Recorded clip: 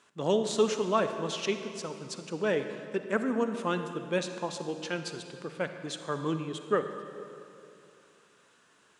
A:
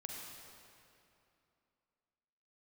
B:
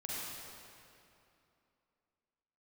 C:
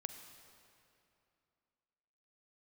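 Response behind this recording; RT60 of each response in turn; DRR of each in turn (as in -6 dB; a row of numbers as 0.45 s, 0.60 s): C; 2.7 s, 2.8 s, 2.7 s; -1.0 dB, -7.0 dB, 7.5 dB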